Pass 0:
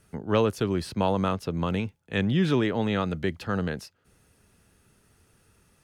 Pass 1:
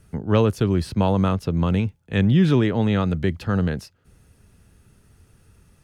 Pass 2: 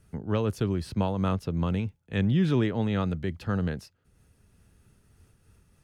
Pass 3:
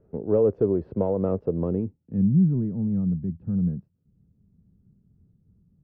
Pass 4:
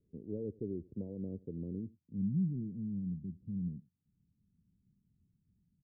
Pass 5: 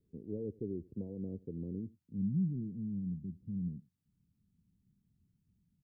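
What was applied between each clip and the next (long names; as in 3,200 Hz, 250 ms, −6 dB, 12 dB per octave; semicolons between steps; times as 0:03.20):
low-shelf EQ 180 Hz +11.5 dB; level +1.5 dB
amplitude modulation by smooth noise, depth 55%; level −4 dB
mid-hump overdrive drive 15 dB, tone 2,900 Hz, clips at −13.5 dBFS; low-pass filter sweep 470 Hz → 180 Hz, 0:01.58–0:02.30
transistor ladder low-pass 390 Hz, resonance 25%; single-tap delay 88 ms −23 dB; level −9 dB
notch filter 580 Hz, Q 12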